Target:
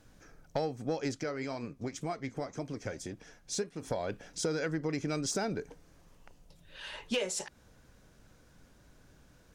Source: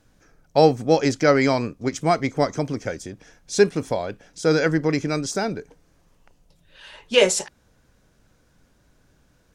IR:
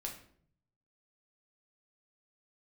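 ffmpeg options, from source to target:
-filter_complex "[0:a]acompressor=threshold=-28dB:ratio=16,asplit=3[a][b][c];[a]afade=t=out:st=1.15:d=0.02[d];[b]flanger=delay=2.6:depth=7.6:regen=70:speed=1.9:shape=triangular,afade=t=in:st=1.15:d=0.02,afade=t=out:st=3.82:d=0.02[e];[c]afade=t=in:st=3.82:d=0.02[f];[d][e][f]amix=inputs=3:normalize=0,asoftclip=type=tanh:threshold=-21.5dB"

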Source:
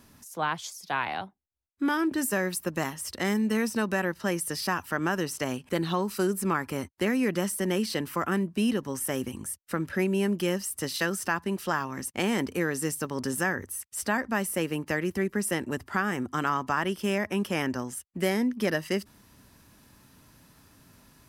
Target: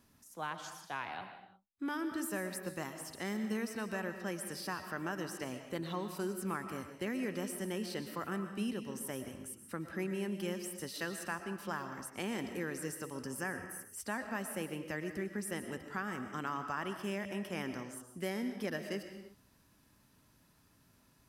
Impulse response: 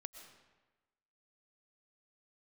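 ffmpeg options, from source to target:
-filter_complex "[0:a]asettb=1/sr,asplit=3[a][b][c];[a]atrim=end=13.124[d];[b]atrim=start=13.12:end=14,asetpts=PTS-STARTPTS,afade=t=in:d=0.004:c=qsin,afade=t=out:st=0.876:d=0.004:c=qsin,asuperstop=centerf=3800:order=4:qfactor=3.3[e];[c]atrim=start=13.996[f];[d][e]acrossfade=d=0.004:c1=hsin:c2=qsin[g];[g][f]acrossfade=d=0.004:c1=qsin:c2=hsin[h];[1:a]atrim=start_sample=2205,afade=t=out:st=0.41:d=0.01,atrim=end_sample=18522[i];[h][i]afir=irnorm=-1:irlink=0,volume=-6dB"

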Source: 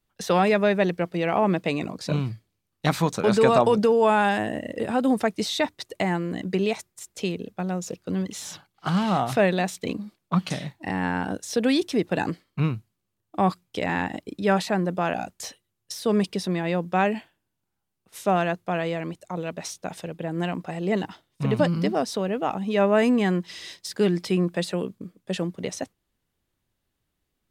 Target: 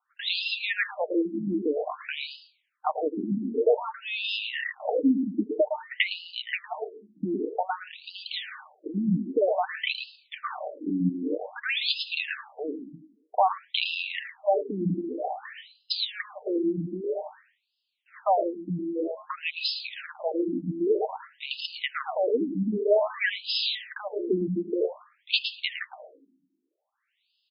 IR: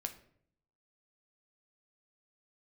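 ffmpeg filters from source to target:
-filter_complex "[0:a]highpass=100,lowshelf=f=210:g=-5,aecho=1:1:6.6:0.36,acompressor=threshold=-24dB:ratio=6,crystalizer=i=3:c=0,asplit=2[a][b];[1:a]atrim=start_sample=2205,asetrate=36162,aresample=44100,adelay=110[c];[b][c]afir=irnorm=-1:irlink=0,volume=-7dB[d];[a][d]amix=inputs=2:normalize=0,afftfilt=real='re*between(b*sr/1024,240*pow(3700/240,0.5+0.5*sin(2*PI*0.52*pts/sr))/1.41,240*pow(3700/240,0.5+0.5*sin(2*PI*0.52*pts/sr))*1.41)':imag='im*between(b*sr/1024,240*pow(3700/240,0.5+0.5*sin(2*PI*0.52*pts/sr))/1.41,240*pow(3700/240,0.5+0.5*sin(2*PI*0.52*pts/sr))*1.41)':win_size=1024:overlap=0.75,volume=7.5dB"

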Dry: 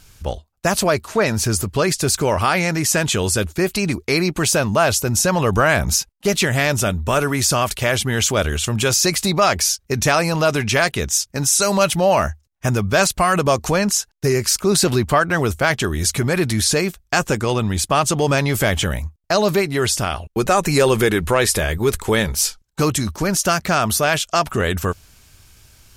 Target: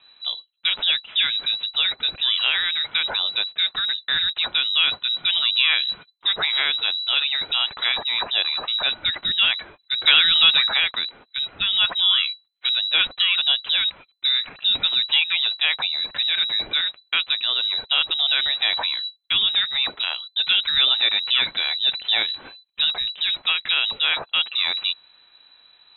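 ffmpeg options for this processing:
-filter_complex "[0:a]asettb=1/sr,asplit=3[a][b][c];[a]atrim=end=10.074[d];[b]atrim=start=10.07:end=10.67,asetpts=PTS-STARTPTS,afade=t=in:d=0.004:c=qsin,afade=t=out:st=0.596:d=0.004:c=qsin,acontrast=77[e];[c]atrim=start=10.666[f];[d][e]acrossfade=d=0.004:c1=hsin:c2=qsin[g];[g][f]acrossfade=d=0.004:c1=qsin:c2=hsin,lowpass=f=3.4k:t=q:w=0.5098,lowpass=f=3.4k:t=q:w=0.6013,lowpass=f=3.4k:t=q:w=0.9,lowpass=f=3.4k:t=q:w=2.563,afreqshift=-4000,volume=-3.5dB"

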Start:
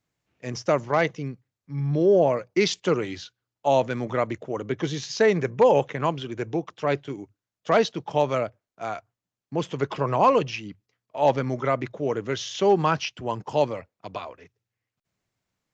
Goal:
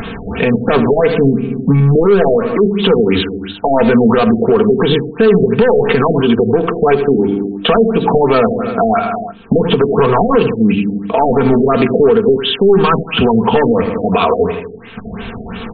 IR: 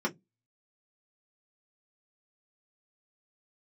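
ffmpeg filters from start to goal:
-filter_complex "[0:a]asuperstop=centerf=4500:order=4:qfactor=2.5,bandreject=f=50:t=h:w=6,bandreject=f=100:t=h:w=6,bandreject=f=150:t=h:w=6,bandreject=f=200:t=h:w=6,bandreject=f=250:t=h:w=6,bandreject=f=300:t=h:w=6,bandreject=f=350:t=h:w=6,asoftclip=type=tanh:threshold=-23dB,equalizer=f=160:t=o:w=0.33:g=-10,equalizer=f=630:t=o:w=0.33:g=-7,equalizer=f=2k:t=o:w=0.33:g=-10,equalizer=f=6.3k:t=o:w=0.33:g=4,aecho=1:1:80|160|240|320:0.211|0.0909|0.0391|0.0168,asplit=2[a][b];[1:a]atrim=start_sample=2205,lowpass=2.1k[c];[b][c]afir=irnorm=-1:irlink=0,volume=-15.5dB[d];[a][d]amix=inputs=2:normalize=0,acompressor=threshold=-47dB:ratio=3,aecho=1:1:4.4:0.62,acompressor=mode=upward:threshold=-37dB:ratio=2.5,alimiter=level_in=34.5dB:limit=-1dB:release=50:level=0:latency=1,afftfilt=real='re*lt(b*sr/1024,720*pow(4700/720,0.5+0.5*sin(2*PI*2.9*pts/sr)))':imag='im*lt(b*sr/1024,720*pow(4700/720,0.5+0.5*sin(2*PI*2.9*pts/sr)))':win_size=1024:overlap=0.75,volume=-1dB"

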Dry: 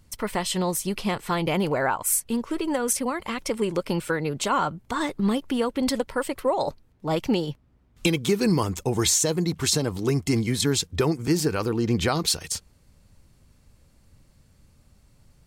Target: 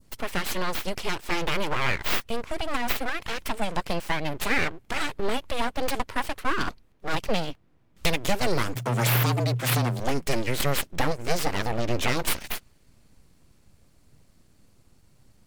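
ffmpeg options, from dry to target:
-filter_complex "[0:a]aeval=exprs='abs(val(0))':c=same,adynamicequalizer=threshold=0.00794:dfrequency=2400:dqfactor=0.83:tfrequency=2400:tqfactor=0.83:attack=5:release=100:ratio=0.375:range=2:mode=boostabove:tftype=bell,asplit=3[a][b][c];[a]afade=t=out:st=8.75:d=0.02[d];[b]afreqshift=120,afade=t=in:st=8.75:d=0.02,afade=t=out:st=9.99:d=0.02[e];[c]afade=t=in:st=9.99:d=0.02[f];[d][e][f]amix=inputs=3:normalize=0"

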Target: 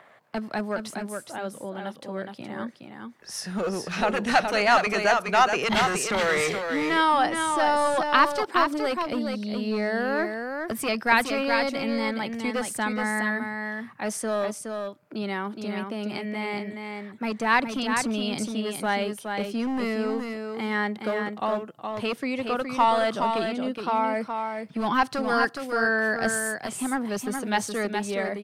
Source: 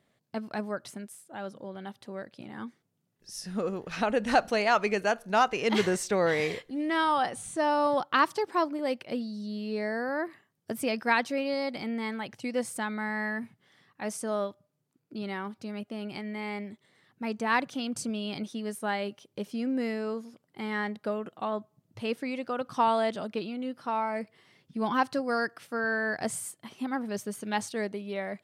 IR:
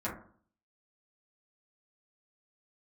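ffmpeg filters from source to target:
-filter_complex "[0:a]highpass=f=99:p=1,acrossover=split=170|640|2000[a][b][c][d];[b]aeval=exprs='0.0282*(abs(mod(val(0)/0.0282+3,4)-2)-1)':c=same[e];[c]acompressor=mode=upward:threshold=-44dB:ratio=2.5[f];[a][e][f][d]amix=inputs=4:normalize=0,aecho=1:1:418:0.531,volume=5.5dB"

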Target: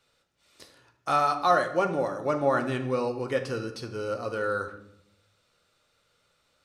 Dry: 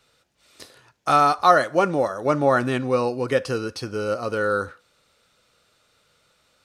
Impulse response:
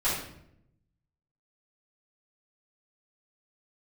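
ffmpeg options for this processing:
-filter_complex "[0:a]asplit=2[a][b];[1:a]atrim=start_sample=2205,lowpass=8.7k[c];[b][c]afir=irnorm=-1:irlink=0,volume=-15.5dB[d];[a][d]amix=inputs=2:normalize=0,volume=-8dB"

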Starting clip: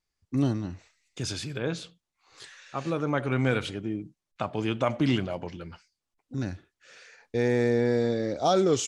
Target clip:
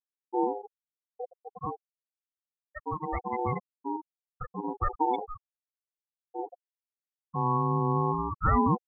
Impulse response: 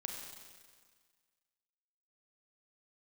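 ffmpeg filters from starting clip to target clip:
-af "afftfilt=real='re*gte(hypot(re,im),0.2)':imag='im*gte(hypot(re,im),0.2)':win_size=1024:overlap=0.75,aeval=exprs='val(0)*sin(2*PI*620*n/s)':c=same,aphaser=in_gain=1:out_gain=1:delay=3:decay=0.33:speed=0.24:type=sinusoidal"

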